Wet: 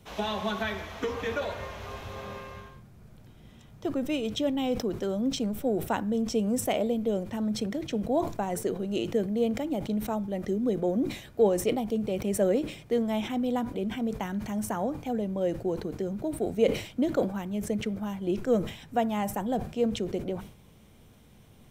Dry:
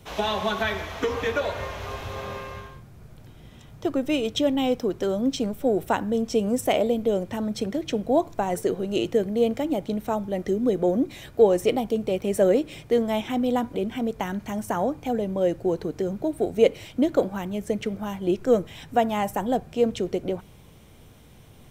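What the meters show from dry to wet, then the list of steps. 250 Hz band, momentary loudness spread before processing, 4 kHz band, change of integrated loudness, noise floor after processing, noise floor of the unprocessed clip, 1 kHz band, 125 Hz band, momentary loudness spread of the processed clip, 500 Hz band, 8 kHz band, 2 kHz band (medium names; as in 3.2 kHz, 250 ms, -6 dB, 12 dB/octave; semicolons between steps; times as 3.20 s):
-3.0 dB, 8 LU, -4.5 dB, -4.5 dB, -54 dBFS, -49 dBFS, -5.5 dB, -2.0 dB, 7 LU, -5.5 dB, -0.5 dB, -5.0 dB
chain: peaking EQ 210 Hz +5.5 dB 0.33 oct; decay stretcher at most 110 dB/s; trim -6 dB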